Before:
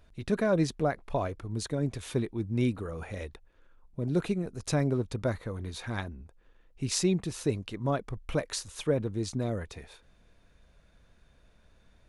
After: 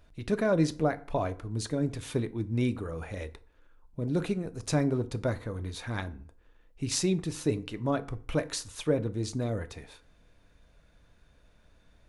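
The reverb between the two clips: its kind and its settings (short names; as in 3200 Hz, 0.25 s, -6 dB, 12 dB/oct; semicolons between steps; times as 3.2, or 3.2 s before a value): FDN reverb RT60 0.47 s, low-frequency decay 1×, high-frequency decay 0.65×, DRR 11 dB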